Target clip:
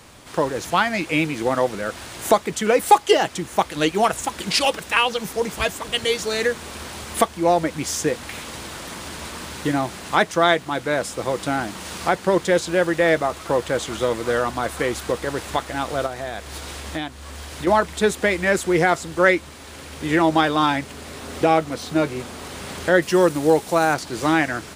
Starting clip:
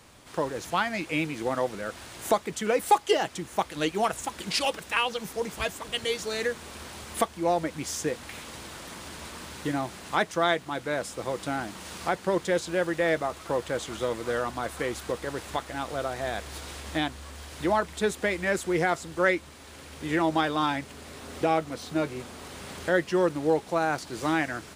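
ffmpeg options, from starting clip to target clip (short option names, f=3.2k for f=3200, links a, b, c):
-filter_complex "[0:a]asettb=1/sr,asplit=3[a][b][c];[a]atrim=end=16.064[d];[b]atrim=start=16.06:end=17.67,asetpts=PTS-STARTPTS,afade=t=in:d=0.004:c=qsin,afade=t=out:st=1.606:d=0.004:c=qsin,acompressor=threshold=-38dB:ratio=2[e];[c]atrim=start=17.666[f];[d][e]acrossfade=d=0.004:c1=hsin:c2=qsin[g];[g][f]acrossfade=d=0.004:c1=qsin:c2=hsin,asettb=1/sr,asplit=3[h][i][j];[h]atrim=end=23.024[k];[i]atrim=start=23.02:end=23.94,asetpts=PTS-STARTPTS,afade=t=in:d=0.004:c=qsin,afade=t=out:st=0.916:d=0.004:c=qsin,highshelf=f=7.1k:g=12[l];[j]atrim=start=23.936[m];[k][l]acrossfade=d=0.004:c1=hsin:c2=qsin[n];[n][m]acrossfade=d=0.004:c1=qsin:c2=hsin,volume=7.5dB"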